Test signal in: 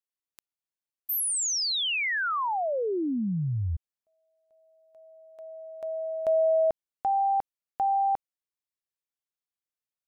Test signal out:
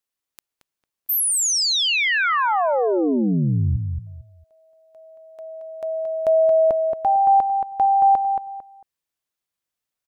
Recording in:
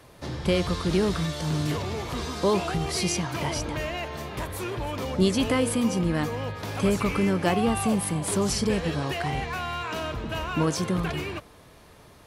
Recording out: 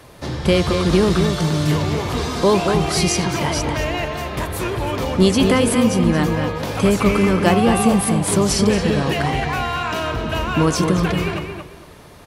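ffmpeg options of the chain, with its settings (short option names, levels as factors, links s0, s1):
-filter_complex "[0:a]asplit=2[s0][s1];[s1]adelay=225,lowpass=f=2700:p=1,volume=0.562,asplit=2[s2][s3];[s3]adelay=225,lowpass=f=2700:p=1,volume=0.26,asplit=2[s4][s5];[s5]adelay=225,lowpass=f=2700:p=1,volume=0.26[s6];[s0][s2][s4][s6]amix=inputs=4:normalize=0,volume=2.37"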